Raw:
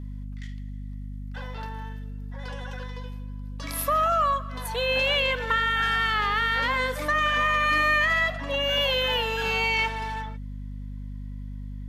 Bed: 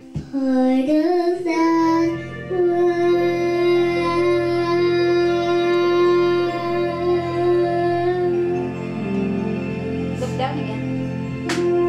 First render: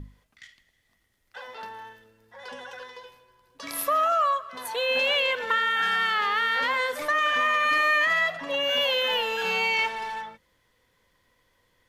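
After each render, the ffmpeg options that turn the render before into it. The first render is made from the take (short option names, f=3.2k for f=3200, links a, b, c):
-af "bandreject=f=50:t=h:w=6,bandreject=f=100:t=h:w=6,bandreject=f=150:t=h:w=6,bandreject=f=200:t=h:w=6,bandreject=f=250:t=h:w=6,bandreject=f=300:t=h:w=6"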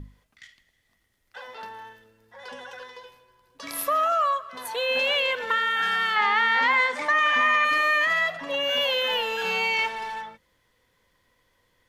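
-filter_complex "[0:a]asettb=1/sr,asplit=3[a][b][c];[a]atrim=end=6.164[d];[b]atrim=start=6.16:end=7.65,asetpts=PTS-STARTPTS,afade=t=in:d=0.004:c=qsin,afade=t=out:st=1.486:d=0.004:c=qsin,highpass=140,equalizer=f=230:t=q:w=4:g=8,equalizer=f=550:t=q:w=4:g=-4,equalizer=f=890:t=q:w=4:g=10,equalizer=f=2.1k:t=q:w=4:g=8,lowpass=f=7.9k:w=0.5412,lowpass=f=7.9k:w=1.3066[e];[c]atrim=start=7.646[f];[d][e]acrossfade=d=0.004:c1=hsin:c2=qsin[g];[g][f]acrossfade=d=0.004:c1=qsin:c2=hsin"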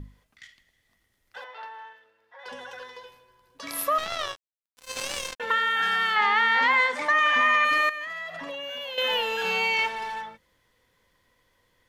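-filter_complex "[0:a]asettb=1/sr,asplit=3[a][b][c];[a]atrim=end=1.444[d];[b]atrim=start=1.44:end=2.46,asetpts=PTS-STARTPTS,afade=t=in:d=0.004:c=qsin,afade=t=out:st=1.016:d=0.004:c=qsin,acrossover=split=480 3900:gain=0.0631 1 0.158[e][f][g];[e][f][g]amix=inputs=3:normalize=0[h];[c]atrim=start=2.456[i];[d][h]acrossfade=d=0.004:c1=hsin:c2=qsin[j];[j][i]acrossfade=d=0.004:c1=qsin:c2=hsin,asettb=1/sr,asplit=3[k][l][m];[k]atrim=end=3.984[n];[l]atrim=start=3.98:end=5.4,asetpts=PTS-STARTPTS,afade=t=in:d=0.004:c=qsin,afade=t=out:st=1.416:d=0.004:c=qsin,acrusher=bits=2:mix=0:aa=0.5[o];[m]atrim=start=5.396[p];[n][o]acrossfade=d=0.004:c1=hsin:c2=qsin[q];[q][p]acrossfade=d=0.004:c1=qsin:c2=hsin,asettb=1/sr,asplit=3[r][s][t];[r]atrim=end=7.894[u];[s]atrim=start=7.89:end=8.98,asetpts=PTS-STARTPTS,afade=t=in:d=0.004:c=qsin,afade=t=out:st=1.086:d=0.004:c=qsin,acompressor=threshold=-32dB:ratio=8:attack=3.2:release=140:knee=1:detection=peak[v];[t]atrim=start=8.976[w];[u][v]acrossfade=d=0.004:c1=hsin:c2=qsin[x];[x][w]acrossfade=d=0.004:c1=qsin:c2=hsin"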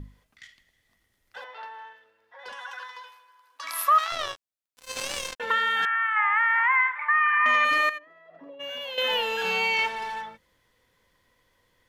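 -filter_complex "[0:a]asplit=3[a][b][c];[a]afade=t=out:st=2.51:d=0.02[d];[b]highpass=f=1.1k:t=q:w=2,afade=t=in:st=2.51:d=0.02,afade=t=out:st=4.11:d=0.02[e];[c]afade=t=in:st=4.11:d=0.02[f];[d][e][f]amix=inputs=3:normalize=0,asettb=1/sr,asplit=3[g][h][i];[g]atrim=end=5.854[j];[h]atrim=start=5.85:end=7.46,asetpts=PTS-STARTPTS,afade=t=in:d=0.004:c=qsin,afade=t=out:st=1.606:d=0.004:c=qsin,asuperpass=centerf=1500:order=8:qfactor=1[k];[i]atrim=start=7.456[l];[j][k]acrossfade=d=0.004:c1=hsin:c2=qsin[m];[m][l]acrossfade=d=0.004:c1=qsin:c2=hsin,asplit=3[n][o][p];[n]afade=t=out:st=7.97:d=0.02[q];[o]bandpass=f=370:t=q:w=2.4,afade=t=in:st=7.97:d=0.02,afade=t=out:st=8.59:d=0.02[r];[p]afade=t=in:st=8.59:d=0.02[s];[q][r][s]amix=inputs=3:normalize=0"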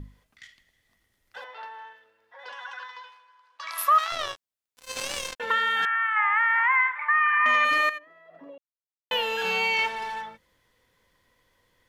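-filter_complex "[0:a]asettb=1/sr,asplit=3[a][b][c];[a]atrim=end=2.454[d];[b]atrim=start=2.45:end=3.78,asetpts=PTS-STARTPTS,afade=t=in:d=0.004:c=qsin,afade=t=out:st=1.326:d=0.004:c=qsin,highpass=460,lowpass=5.2k[e];[c]atrim=start=3.776[f];[d][e]acrossfade=d=0.004:c1=hsin:c2=qsin[g];[g][f]acrossfade=d=0.004:c1=qsin:c2=hsin,asplit=3[h][i][j];[h]atrim=end=8.58,asetpts=PTS-STARTPTS,afade=t=out:st=8.576:d=0.004:c=hsin[k];[i]atrim=start=8.58:end=9.11,asetpts=PTS-STARTPTS,volume=0[l];[j]atrim=start=9.11,asetpts=PTS-STARTPTS,afade=t=in:d=0.004:c=hsin[m];[k][l][m]concat=n=3:v=0:a=1"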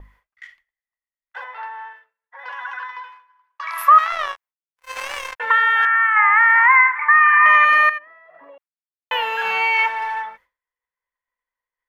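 -af "agate=range=-33dB:threshold=-50dB:ratio=3:detection=peak,equalizer=f=125:t=o:w=1:g=-12,equalizer=f=250:t=o:w=1:g=-8,equalizer=f=1k:t=o:w=1:g=9,equalizer=f=2k:t=o:w=1:g=9,equalizer=f=4k:t=o:w=1:g=-5,equalizer=f=8k:t=o:w=1:g=-5"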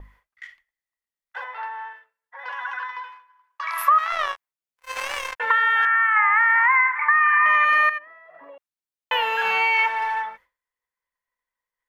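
-af "acompressor=threshold=-16dB:ratio=3"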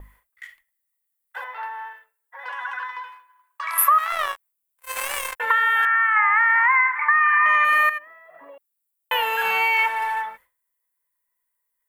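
-af "aexciter=amount=6.6:drive=3.3:freq=7.9k"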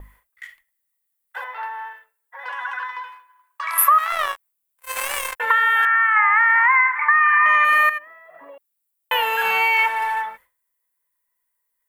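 -af "volume=2dB"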